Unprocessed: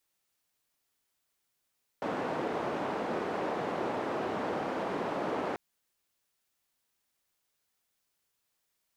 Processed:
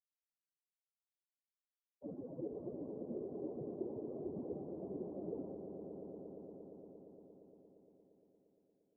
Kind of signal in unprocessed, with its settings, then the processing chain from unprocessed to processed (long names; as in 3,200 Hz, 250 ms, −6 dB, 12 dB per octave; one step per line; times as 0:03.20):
band-limited noise 240–710 Hz, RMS −33.5 dBFS 3.54 s
spectral dynamics exaggerated over time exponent 3
inverse Chebyshev low-pass filter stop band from 2,700 Hz, stop band 80 dB
on a send: echo that builds up and dies away 116 ms, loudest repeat 5, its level −10 dB